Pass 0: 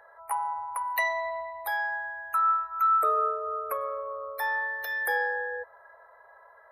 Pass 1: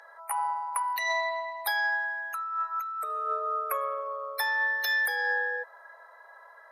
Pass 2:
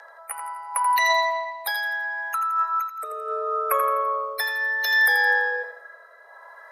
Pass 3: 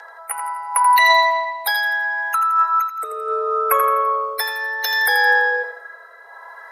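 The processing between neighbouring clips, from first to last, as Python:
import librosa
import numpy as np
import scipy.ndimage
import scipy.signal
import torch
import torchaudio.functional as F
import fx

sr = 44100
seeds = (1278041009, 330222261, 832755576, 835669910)

y1 = fx.highpass(x, sr, hz=610.0, slope=6)
y1 = fx.over_compress(y1, sr, threshold_db=-31.0, ratio=-1.0)
y1 = fx.peak_eq(y1, sr, hz=5300.0, db=14.0, octaves=1.7)
y2 = fx.rotary(y1, sr, hz=0.7)
y2 = fx.echo_feedback(y2, sr, ms=84, feedback_pct=37, wet_db=-9.0)
y2 = F.gain(torch.from_numpy(y2), 9.0).numpy()
y3 = fx.notch_comb(y2, sr, f0_hz=600.0)
y3 = F.gain(torch.from_numpy(y3), 7.5).numpy()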